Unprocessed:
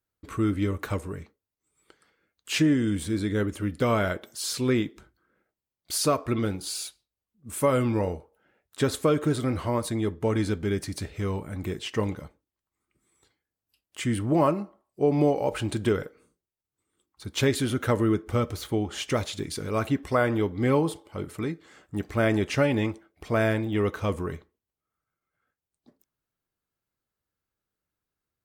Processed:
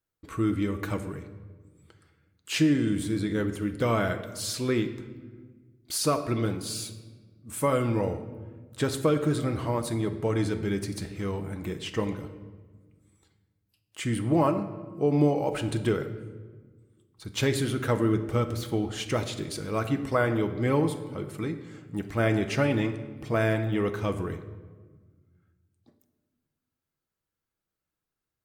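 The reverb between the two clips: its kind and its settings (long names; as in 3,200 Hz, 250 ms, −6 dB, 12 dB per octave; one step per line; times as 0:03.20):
rectangular room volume 1,300 cubic metres, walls mixed, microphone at 0.65 metres
level −2 dB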